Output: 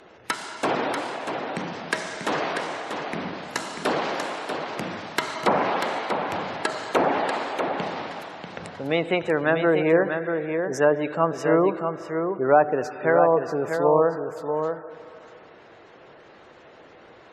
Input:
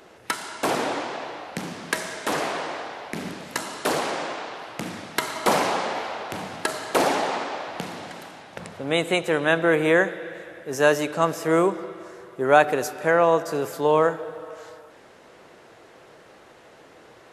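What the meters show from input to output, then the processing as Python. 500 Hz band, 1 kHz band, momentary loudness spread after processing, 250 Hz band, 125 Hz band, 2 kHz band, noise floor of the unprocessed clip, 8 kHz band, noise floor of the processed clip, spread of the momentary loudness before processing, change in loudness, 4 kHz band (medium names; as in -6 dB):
+1.0 dB, 0.0 dB, 12 LU, +1.0 dB, +1.0 dB, -2.0 dB, -50 dBFS, -6.5 dB, -49 dBFS, 16 LU, -0.5 dB, -3.0 dB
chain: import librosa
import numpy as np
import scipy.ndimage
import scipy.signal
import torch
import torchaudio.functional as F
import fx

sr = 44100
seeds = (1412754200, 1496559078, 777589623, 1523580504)

y = fx.spec_gate(x, sr, threshold_db=-25, keep='strong')
y = fx.env_lowpass_down(y, sr, base_hz=1100.0, full_db=-14.5)
y = y + 10.0 ** (-6.5 / 20.0) * np.pad(y, (int(640 * sr / 1000.0), 0))[:len(y)]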